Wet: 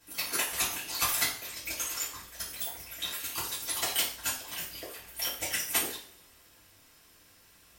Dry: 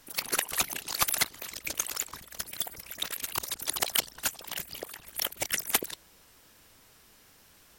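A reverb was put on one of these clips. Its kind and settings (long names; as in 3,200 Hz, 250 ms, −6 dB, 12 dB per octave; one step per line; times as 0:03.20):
coupled-rooms reverb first 0.44 s, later 1.6 s, from −24 dB, DRR −9.5 dB
level −10.5 dB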